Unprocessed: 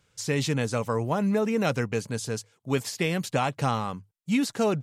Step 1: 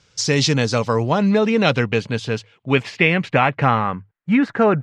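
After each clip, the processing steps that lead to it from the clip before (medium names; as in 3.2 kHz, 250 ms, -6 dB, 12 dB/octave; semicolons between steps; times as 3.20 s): low-pass sweep 5.5 kHz -> 1.7 kHz, 0.29–4.24 s; trim +8 dB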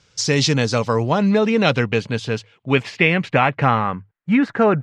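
no audible change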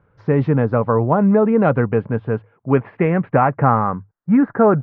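low-pass 1.4 kHz 24 dB/octave; trim +2.5 dB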